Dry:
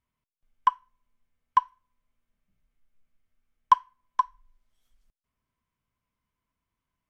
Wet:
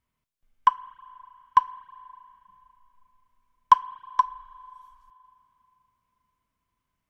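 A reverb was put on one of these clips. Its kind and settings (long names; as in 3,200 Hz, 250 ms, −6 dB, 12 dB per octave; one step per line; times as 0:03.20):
spring reverb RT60 3.1 s, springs 34/39 ms, chirp 35 ms, DRR 18 dB
level +3 dB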